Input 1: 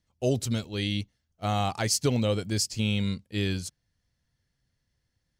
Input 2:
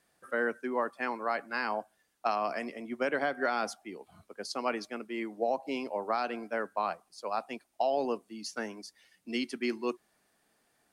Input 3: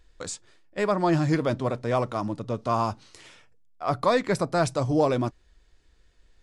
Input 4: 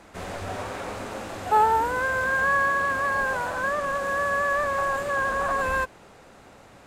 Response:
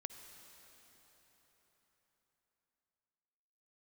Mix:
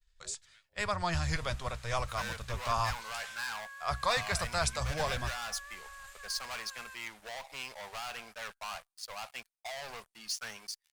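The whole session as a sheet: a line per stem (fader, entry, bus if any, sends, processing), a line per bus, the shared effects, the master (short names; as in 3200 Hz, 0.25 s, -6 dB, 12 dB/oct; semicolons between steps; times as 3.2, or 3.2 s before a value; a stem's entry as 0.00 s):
-1.5 dB, 0.00 s, no send, stepped band-pass 2.9 Hz 370–5900 Hz; auto duck -18 dB, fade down 1.15 s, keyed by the third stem
-10.0 dB, 1.85 s, no send, sample leveller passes 5
-5.0 dB, 0.00 s, no send, octaver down 1 oct, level -3 dB; AGC gain up to 10 dB
-17.0 dB, 1.10 s, no send, tilt shelf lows -7.5 dB, about 1100 Hz; limiter -17 dBFS, peak gain reduction 6.5 dB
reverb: off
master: expander -57 dBFS; passive tone stack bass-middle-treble 10-0-10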